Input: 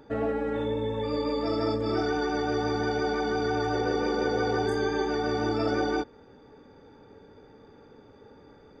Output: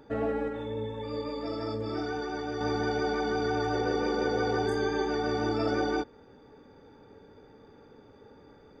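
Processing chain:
0:00.48–0:02.61: flanger 1 Hz, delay 7 ms, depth 3.3 ms, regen +70%
level −1.5 dB

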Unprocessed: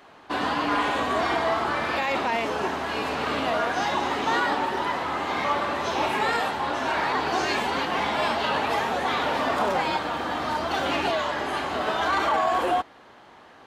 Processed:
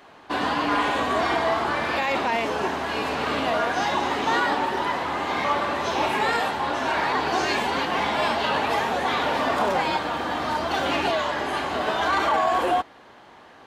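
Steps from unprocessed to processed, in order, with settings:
notch filter 1,300 Hz, Q 27
level +1.5 dB

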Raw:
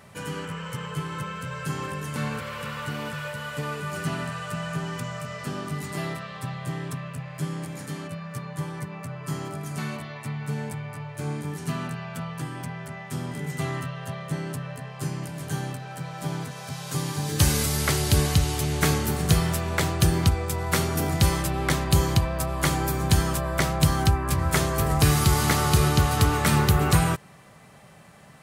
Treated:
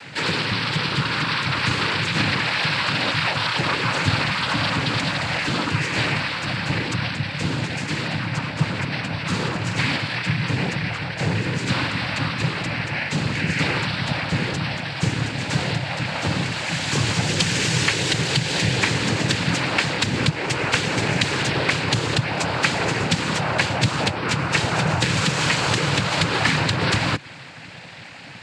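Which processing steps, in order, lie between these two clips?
parametric band 2,600 Hz +14 dB 0.92 octaves
downward compressor, threshold −24 dBFS, peak gain reduction 11.5 dB
cochlear-implant simulation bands 8
level +8 dB

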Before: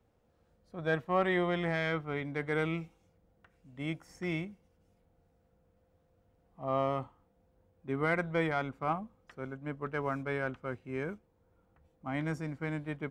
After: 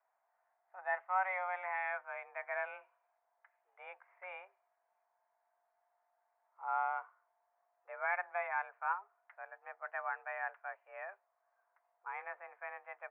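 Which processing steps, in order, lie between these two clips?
single-sideband voice off tune +190 Hz 520–2,000 Hz
level −2.5 dB

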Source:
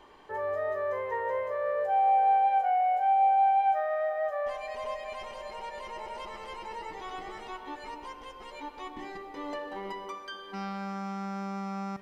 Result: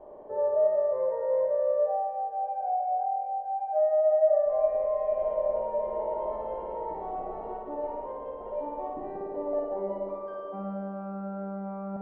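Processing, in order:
reversed playback
downward compressor 6 to 1, threshold −35 dBFS, peak gain reduction 13.5 dB
reversed playback
low-pass with resonance 620 Hz, resonance Q 7.6
flutter between parallel walls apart 9.5 metres, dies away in 1.5 s

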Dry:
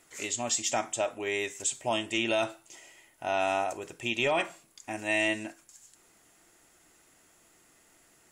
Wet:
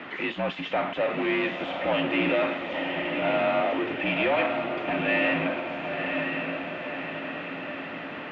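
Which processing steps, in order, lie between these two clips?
power curve on the samples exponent 0.35
feedback delay with all-pass diffusion 1,017 ms, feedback 54%, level −4 dB
single-sideband voice off tune −52 Hz 200–3,100 Hz
level −4 dB

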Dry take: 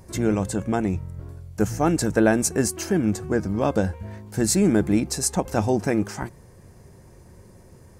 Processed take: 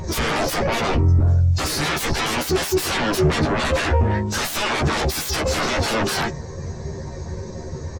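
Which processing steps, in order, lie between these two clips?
hearing-aid frequency compression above 2,500 Hz 1.5 to 1
low-shelf EQ 490 Hz −8.5 dB
brickwall limiter −20.5 dBFS, peak gain reduction 11 dB
sine wavefolder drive 19 dB, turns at −20.5 dBFS
double-tracking delay 13 ms −5 dB
every bin expanded away from the loudest bin 1.5 to 1
level +5.5 dB

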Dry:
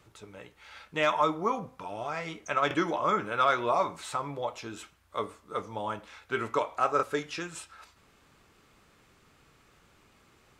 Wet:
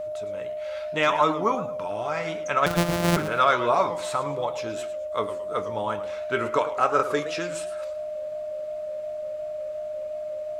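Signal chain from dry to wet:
0:02.66–0:03.17: samples sorted by size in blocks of 256 samples
steady tone 610 Hz −34 dBFS
feedback echo with a swinging delay time 112 ms, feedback 35%, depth 196 cents, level −13 dB
level +4.5 dB

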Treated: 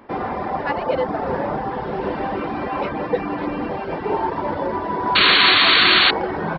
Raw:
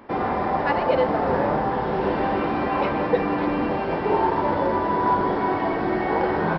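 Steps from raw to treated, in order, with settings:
reverb reduction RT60 0.59 s
sound drawn into the spectrogram noise, 0:05.15–0:06.11, 960–4,500 Hz −14 dBFS

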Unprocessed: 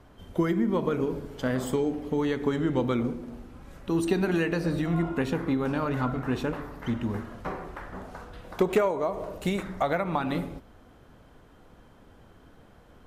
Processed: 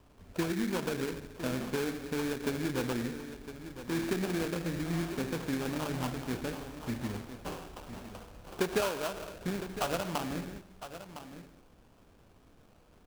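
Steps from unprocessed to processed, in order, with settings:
sample-rate reduction 2,000 Hz, jitter 20%
on a send: single-tap delay 1,009 ms −12 dB
on the sum: level −7 dB

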